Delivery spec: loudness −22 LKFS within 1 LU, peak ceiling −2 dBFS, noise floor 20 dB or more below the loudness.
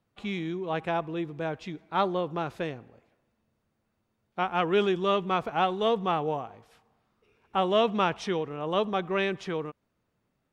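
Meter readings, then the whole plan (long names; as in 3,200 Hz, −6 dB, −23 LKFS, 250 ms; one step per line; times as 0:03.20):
integrated loudness −29.0 LKFS; sample peak −11.5 dBFS; target loudness −22.0 LKFS
→ level +7 dB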